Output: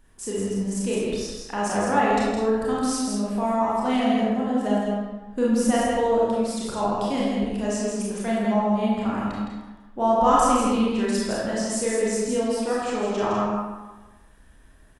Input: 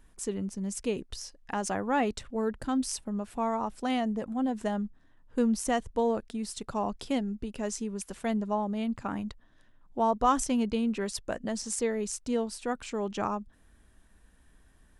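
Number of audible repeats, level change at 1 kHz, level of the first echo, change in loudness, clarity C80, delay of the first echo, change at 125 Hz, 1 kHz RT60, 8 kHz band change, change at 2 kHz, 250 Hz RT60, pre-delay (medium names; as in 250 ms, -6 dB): 1, +8.0 dB, -4.0 dB, +7.5 dB, -1.0 dB, 163 ms, +8.0 dB, 1.2 s, +5.5 dB, +8.0 dB, 1.1 s, 26 ms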